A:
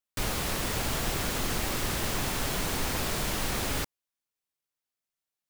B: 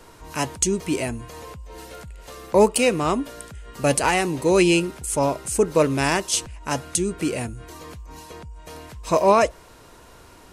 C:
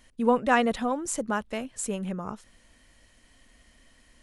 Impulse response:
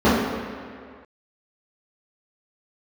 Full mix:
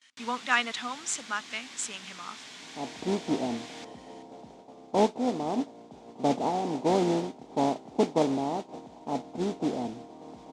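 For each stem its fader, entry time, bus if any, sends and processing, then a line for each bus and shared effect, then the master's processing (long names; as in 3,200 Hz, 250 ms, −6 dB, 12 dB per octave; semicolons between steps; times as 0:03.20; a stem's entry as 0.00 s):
−8.0 dB, 0.00 s, no send, notch filter 1,300 Hz, Q 5.1; automatic ducking −8 dB, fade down 0.20 s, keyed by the third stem
−6.0 dB, 2.40 s, no send, compressing power law on the bin magnitudes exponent 0.48; Butterworth low-pass 820 Hz 48 dB per octave; automatic gain control gain up to 10.5 dB
−7.0 dB, 0.00 s, no send, noise gate with hold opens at −51 dBFS; tilt shelving filter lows −7 dB, about 830 Hz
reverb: not used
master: spectral tilt +2 dB per octave; noise that follows the level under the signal 18 dB; loudspeaker in its box 200–7,000 Hz, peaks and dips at 250 Hz +7 dB, 370 Hz −4 dB, 550 Hz −8 dB, 1,300 Hz +5 dB, 2,200 Hz +4 dB, 3,500 Hz +5 dB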